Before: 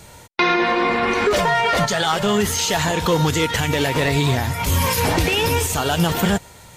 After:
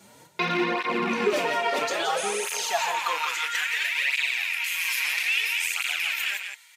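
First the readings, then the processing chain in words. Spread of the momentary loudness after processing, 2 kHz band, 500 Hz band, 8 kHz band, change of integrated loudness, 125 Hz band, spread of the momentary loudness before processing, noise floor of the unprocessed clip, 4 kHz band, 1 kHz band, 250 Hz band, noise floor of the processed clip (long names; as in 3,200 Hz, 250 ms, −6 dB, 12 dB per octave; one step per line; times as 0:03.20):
4 LU, −2.5 dB, −9.5 dB, −7.5 dB, −6.5 dB, below −20 dB, 3 LU, −44 dBFS, −5.5 dB, −8.0 dB, −12.5 dB, −53 dBFS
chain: loose part that buzzes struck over −28 dBFS, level −12 dBFS
healed spectral selection 0:02.20–0:02.45, 450–11,000 Hz after
low-shelf EQ 96 Hz −10 dB
loudspeakers that aren't time-aligned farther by 12 metres −11 dB, 59 metres −7 dB
high-pass filter sweep 180 Hz → 2,100 Hz, 0:01.02–0:03.94
through-zero flanger with one copy inverted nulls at 0.6 Hz, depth 6.8 ms
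level −6.5 dB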